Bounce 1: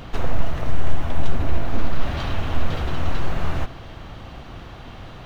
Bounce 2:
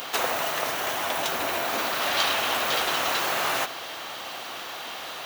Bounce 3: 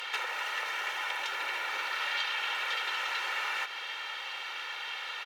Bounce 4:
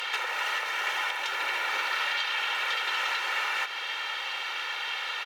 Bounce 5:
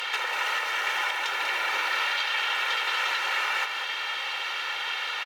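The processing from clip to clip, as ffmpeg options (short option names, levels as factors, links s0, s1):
-af "highpass=570,aemphasis=mode=production:type=75fm,volume=2.24"
-af "aecho=1:1:2.2:0.76,acompressor=threshold=0.0562:ratio=6,bandpass=f=2100:t=q:w=1.3:csg=0"
-af "alimiter=limit=0.0668:level=0:latency=1:release=362,volume=1.88"
-af "aecho=1:1:194:0.422,volume=1.19"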